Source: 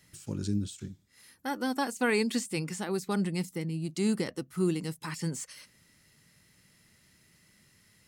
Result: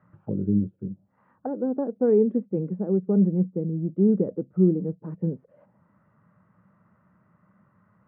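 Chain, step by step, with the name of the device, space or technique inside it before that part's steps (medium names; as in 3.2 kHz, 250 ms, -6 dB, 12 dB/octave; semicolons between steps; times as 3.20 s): envelope filter bass rig (touch-sensitive low-pass 430–1200 Hz down, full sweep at -35 dBFS; cabinet simulation 83–2300 Hz, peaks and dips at 110 Hz +6 dB, 190 Hz +10 dB, 390 Hz -4 dB, 590 Hz +7 dB, 1.4 kHz +3 dB, 2.1 kHz -6 dB)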